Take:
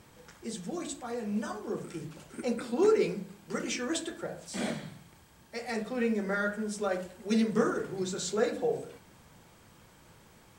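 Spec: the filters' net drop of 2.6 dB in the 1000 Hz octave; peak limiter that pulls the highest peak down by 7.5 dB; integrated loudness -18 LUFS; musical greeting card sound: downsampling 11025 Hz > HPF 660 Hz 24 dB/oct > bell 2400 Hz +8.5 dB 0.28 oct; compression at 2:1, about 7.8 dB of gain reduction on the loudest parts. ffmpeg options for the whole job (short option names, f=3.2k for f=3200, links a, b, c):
-af "equalizer=f=1k:t=o:g=-3.5,acompressor=threshold=-35dB:ratio=2,alimiter=level_in=5dB:limit=-24dB:level=0:latency=1,volume=-5dB,aresample=11025,aresample=44100,highpass=f=660:w=0.5412,highpass=f=660:w=1.3066,equalizer=f=2.4k:t=o:w=0.28:g=8.5,volume=27.5dB"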